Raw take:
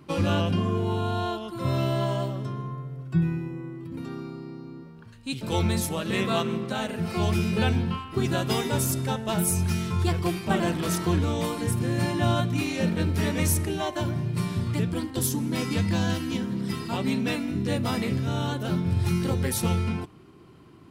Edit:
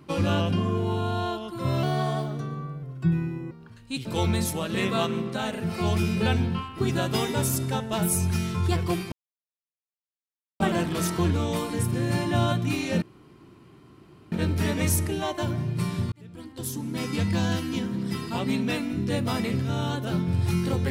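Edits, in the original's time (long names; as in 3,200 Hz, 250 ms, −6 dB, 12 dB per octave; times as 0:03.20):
0:01.83–0:02.93: play speed 110%
0:03.61–0:04.87: remove
0:10.48: splice in silence 1.48 s
0:12.90: splice in room tone 1.30 s
0:14.70–0:15.87: fade in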